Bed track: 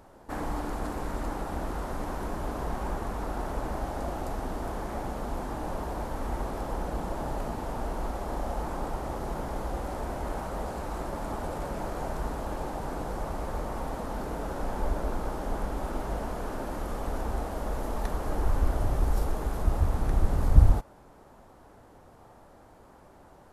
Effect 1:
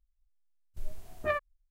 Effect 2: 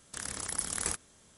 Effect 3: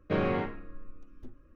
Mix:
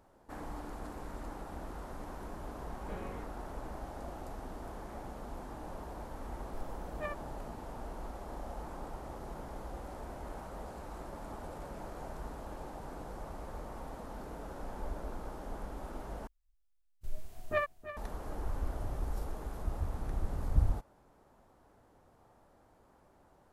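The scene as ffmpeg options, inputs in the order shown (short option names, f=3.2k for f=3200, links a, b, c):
-filter_complex "[1:a]asplit=2[a][b];[0:a]volume=-10.5dB[c];[b]aecho=1:1:323:0.224[d];[c]asplit=2[e][f];[e]atrim=end=16.274[g];[d]atrim=end=1.7,asetpts=PTS-STARTPTS,volume=-1.5dB[h];[f]atrim=start=17.966[i];[3:a]atrim=end=1.55,asetpts=PTS-STARTPTS,volume=-17.5dB,afade=t=in:d=0.004:c=hsin,afade=t=out:st=1.546:d=0.004:c=hsin,adelay=2780[j];[a]atrim=end=1.7,asetpts=PTS-STARTPTS,volume=-10dB,afade=t=in:d=0.004:c=hsin,afade=t=out:st=1.696:d=0.004:c=hsin,adelay=5750[k];[g][h]acrossfade=d=0.004:c1=hsin:c2=hsin[l];[l][i]acrossfade=d=0.004:c1=hsin:c2=hsin[m];[m][j][k]amix=inputs=3:normalize=0"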